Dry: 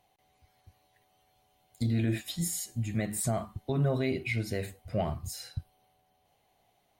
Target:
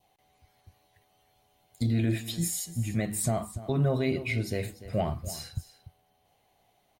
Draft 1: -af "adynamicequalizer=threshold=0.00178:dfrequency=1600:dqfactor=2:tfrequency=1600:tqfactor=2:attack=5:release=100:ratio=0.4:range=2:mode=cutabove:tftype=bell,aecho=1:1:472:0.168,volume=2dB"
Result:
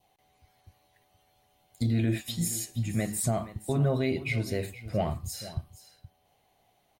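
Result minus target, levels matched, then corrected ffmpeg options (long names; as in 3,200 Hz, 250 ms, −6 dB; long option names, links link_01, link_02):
echo 179 ms late
-af "adynamicequalizer=threshold=0.00178:dfrequency=1600:dqfactor=2:tfrequency=1600:tqfactor=2:attack=5:release=100:ratio=0.4:range=2:mode=cutabove:tftype=bell,aecho=1:1:293:0.168,volume=2dB"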